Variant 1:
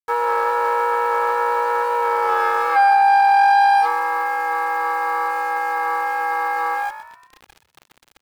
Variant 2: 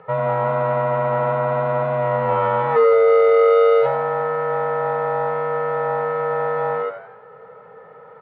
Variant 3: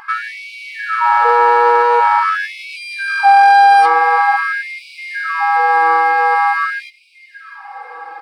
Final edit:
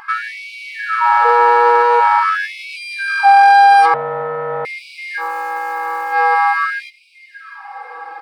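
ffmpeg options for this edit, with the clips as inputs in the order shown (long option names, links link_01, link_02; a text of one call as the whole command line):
ffmpeg -i take0.wav -i take1.wav -i take2.wav -filter_complex "[2:a]asplit=3[link_01][link_02][link_03];[link_01]atrim=end=3.942[link_04];[1:a]atrim=start=3.938:end=4.652[link_05];[link_02]atrim=start=4.648:end=5.23[link_06];[0:a]atrim=start=5.17:end=6.17[link_07];[link_03]atrim=start=6.11[link_08];[link_04][link_05]acrossfade=duration=0.004:curve1=hsin:curve2=hsin[link_09];[link_09][link_06]acrossfade=duration=0.004:curve1=hsin:curve2=hsin[link_10];[link_10][link_07]acrossfade=duration=0.06:curve1=tri:curve2=tri[link_11];[link_11][link_08]acrossfade=duration=0.06:curve1=tri:curve2=tri" out.wav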